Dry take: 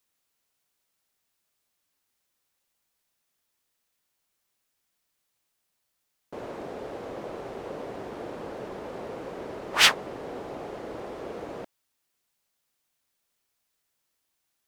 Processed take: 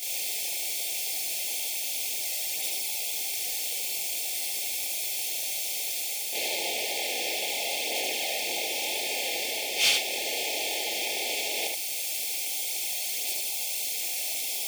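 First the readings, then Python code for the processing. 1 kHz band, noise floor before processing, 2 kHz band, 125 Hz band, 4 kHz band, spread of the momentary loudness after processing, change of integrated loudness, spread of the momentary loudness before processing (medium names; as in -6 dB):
-1.0 dB, -79 dBFS, +2.0 dB, under -10 dB, +4.5 dB, 1 LU, +2.5 dB, 19 LU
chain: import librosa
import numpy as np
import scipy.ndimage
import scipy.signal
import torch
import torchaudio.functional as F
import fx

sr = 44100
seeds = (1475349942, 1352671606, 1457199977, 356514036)

y = fx.bin_compress(x, sr, power=0.4)
y = fx.quant_dither(y, sr, seeds[0], bits=6, dither='triangular')
y = scipy.signal.sosfilt(scipy.signal.ellip(3, 1.0, 80, [820.0, 2100.0], 'bandstop', fs=sr, output='sos'), y)
y = fx.high_shelf(y, sr, hz=3500.0, db=5.5)
y = fx.rider(y, sr, range_db=3, speed_s=0.5)
y = fx.chorus_voices(y, sr, voices=2, hz=0.94, base_ms=25, depth_ms=4.3, mix_pct=65)
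y = scipy.signal.sosfilt(scipy.signal.butter(2, 450.0, 'highpass', fs=sr, output='sos'), y)
y = np.clip(10.0 ** (16.5 / 20.0) * y, -1.0, 1.0) / 10.0 ** (16.5 / 20.0)
y = fx.notch_comb(y, sr, f0_hz=970.0)
y = y + 10.0 ** (-3.5 / 20.0) * np.pad(y, (int(73 * sr / 1000.0), 0))[:len(y)]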